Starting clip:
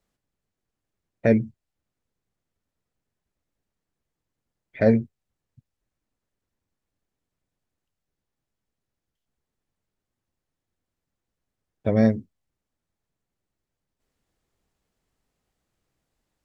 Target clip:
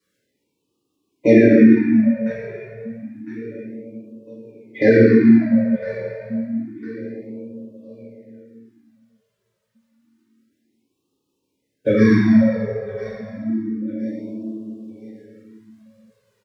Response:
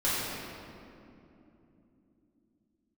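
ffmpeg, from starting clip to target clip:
-filter_complex "[0:a]highpass=210,equalizer=f=710:w=3:g=-15,aecho=1:1:1005|2010|3015:0.178|0.0658|0.0243,tremolo=f=5.4:d=0.28[a];[1:a]atrim=start_sample=2205[b];[a][b]afir=irnorm=-1:irlink=0,flanger=delay=1.7:depth=1.8:regen=24:speed=0.25:shape=triangular,equalizer=f=280:w=4:g=8,alimiter=level_in=8.5dB:limit=-1dB:release=50:level=0:latency=1,afftfilt=real='re*(1-between(b*sr/1024,270*pow(1800/270,0.5+0.5*sin(2*PI*0.29*pts/sr))/1.41,270*pow(1800/270,0.5+0.5*sin(2*PI*0.29*pts/sr))*1.41))':imag='im*(1-between(b*sr/1024,270*pow(1800/270,0.5+0.5*sin(2*PI*0.29*pts/sr))/1.41,270*pow(1800/270,0.5+0.5*sin(2*PI*0.29*pts/sr))*1.41))':win_size=1024:overlap=0.75,volume=-1dB"

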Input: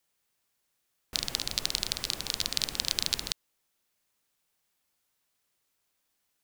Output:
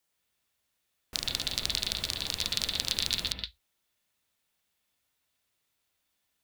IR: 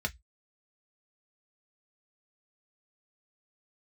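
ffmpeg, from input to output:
-filter_complex "[0:a]asplit=2[a][b];[b]highshelf=f=5k:t=q:w=3:g=-10.5[c];[1:a]atrim=start_sample=2205,adelay=119[d];[c][d]afir=irnorm=-1:irlink=0,volume=-8dB[e];[a][e]amix=inputs=2:normalize=0,volume=-2dB"

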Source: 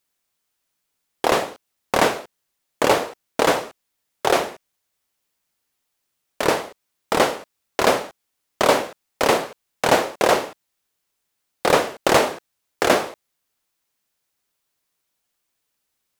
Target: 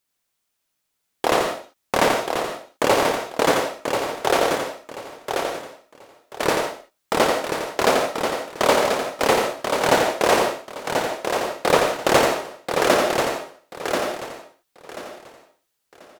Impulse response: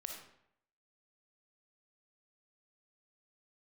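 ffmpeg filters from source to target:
-filter_complex "[0:a]aecho=1:1:1036|2072|3108:0.531|0.133|0.0332,asplit=2[a][b];[1:a]atrim=start_sample=2205,atrim=end_sample=3969,adelay=87[c];[b][c]afir=irnorm=-1:irlink=0,volume=-0.5dB[d];[a][d]amix=inputs=2:normalize=0,volume=-1.5dB"

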